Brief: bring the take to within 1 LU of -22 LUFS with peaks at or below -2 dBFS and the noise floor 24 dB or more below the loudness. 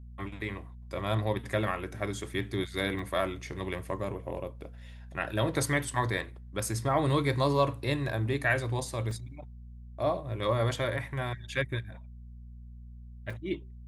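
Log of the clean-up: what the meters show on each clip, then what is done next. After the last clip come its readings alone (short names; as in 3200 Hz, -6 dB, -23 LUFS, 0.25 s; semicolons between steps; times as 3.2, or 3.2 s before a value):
dropouts 3; longest dropout 3.3 ms; hum 60 Hz; harmonics up to 240 Hz; hum level -44 dBFS; loudness -31.5 LUFS; peak -12.5 dBFS; loudness target -22.0 LUFS
-> interpolate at 2.99/9.11/13.3, 3.3 ms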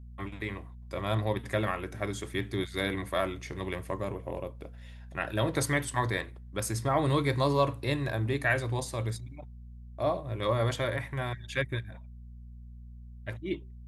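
dropouts 0; hum 60 Hz; harmonics up to 240 Hz; hum level -44 dBFS
-> de-hum 60 Hz, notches 4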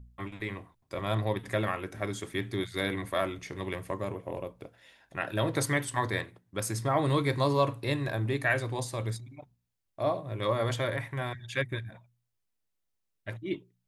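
hum none; loudness -32.0 LUFS; peak -13.0 dBFS; loudness target -22.0 LUFS
-> gain +10 dB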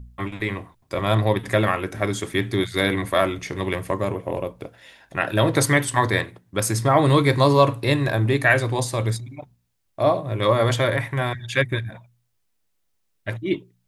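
loudness -22.0 LUFS; peak -3.0 dBFS; noise floor -70 dBFS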